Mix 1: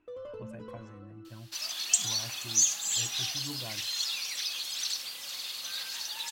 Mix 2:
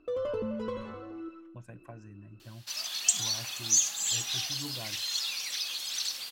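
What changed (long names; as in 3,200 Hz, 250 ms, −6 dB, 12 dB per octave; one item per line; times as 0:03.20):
speech: entry +1.15 s
first sound +10.0 dB
second sound: entry +1.15 s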